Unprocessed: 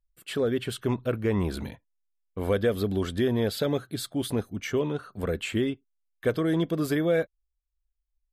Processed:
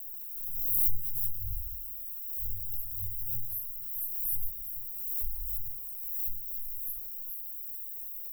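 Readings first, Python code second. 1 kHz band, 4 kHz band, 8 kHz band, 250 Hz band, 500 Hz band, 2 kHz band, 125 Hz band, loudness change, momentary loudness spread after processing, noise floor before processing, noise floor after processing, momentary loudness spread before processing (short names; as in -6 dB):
under -40 dB, under -40 dB, -3.0 dB, under -40 dB, under -40 dB, under -40 dB, -15.5 dB, -4.0 dB, 9 LU, -79 dBFS, -41 dBFS, 7 LU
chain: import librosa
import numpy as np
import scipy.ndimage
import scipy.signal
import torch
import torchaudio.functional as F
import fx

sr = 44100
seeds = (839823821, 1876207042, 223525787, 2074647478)

p1 = fx.bin_expand(x, sr, power=2.0)
p2 = fx.high_shelf(p1, sr, hz=8900.0, db=7.0)
p3 = fx.room_shoebox(p2, sr, seeds[0], volume_m3=320.0, walls='furnished', distance_m=5.2)
p4 = fx.quant_dither(p3, sr, seeds[1], bits=6, dither='triangular')
p5 = p3 + F.gain(torch.from_numpy(p4), -7.0).numpy()
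p6 = scipy.signal.sosfilt(scipy.signal.cheby2(4, 70, [150.0, 5100.0], 'bandstop', fs=sr, output='sos'), p5)
p7 = fx.peak_eq(p6, sr, hz=140.0, db=9.5, octaves=1.2)
p8 = fx.vibrato(p7, sr, rate_hz=1.3, depth_cents=23.0)
p9 = p8 + fx.echo_thinned(p8, sr, ms=424, feedback_pct=42, hz=1000.0, wet_db=-5.5, dry=0)
p10 = fx.pre_swell(p9, sr, db_per_s=33.0)
y = F.gain(torch.from_numpy(p10), 7.5).numpy()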